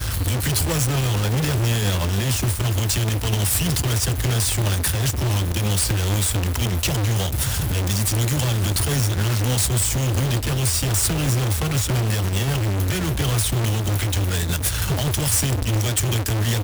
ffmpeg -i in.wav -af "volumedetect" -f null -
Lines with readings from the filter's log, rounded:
mean_volume: -20.7 dB
max_volume: -10.7 dB